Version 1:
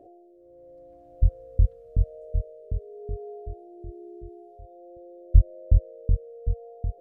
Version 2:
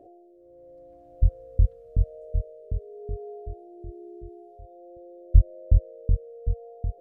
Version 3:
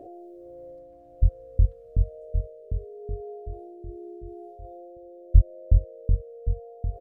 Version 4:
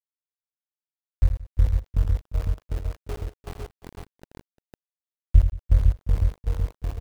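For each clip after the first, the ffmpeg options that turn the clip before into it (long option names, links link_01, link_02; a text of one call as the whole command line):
ffmpeg -i in.wav -af anull out.wav
ffmpeg -i in.wav -filter_complex "[0:a]asplit=2[link_01][link_02];[link_02]adelay=431.5,volume=-24dB,highshelf=frequency=4000:gain=-9.71[link_03];[link_01][link_03]amix=inputs=2:normalize=0,areverse,acompressor=mode=upward:threshold=-35dB:ratio=2.5,areverse" out.wav
ffmpeg -i in.wav -af "aeval=exprs='val(0)*gte(abs(val(0)),0.0299)':channel_layout=same,aecho=1:1:81|176|349|504:0.376|0.1|0.112|0.668" out.wav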